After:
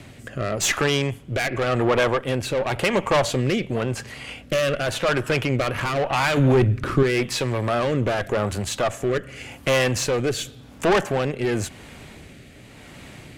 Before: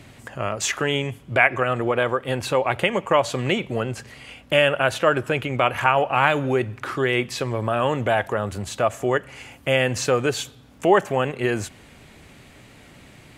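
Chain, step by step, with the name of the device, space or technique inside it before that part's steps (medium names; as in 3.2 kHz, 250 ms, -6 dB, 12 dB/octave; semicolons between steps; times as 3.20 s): overdriven rotary cabinet (valve stage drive 22 dB, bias 0.5; rotary cabinet horn 0.9 Hz); 6.37–7.03 s: bass shelf 260 Hz +10.5 dB; trim +8 dB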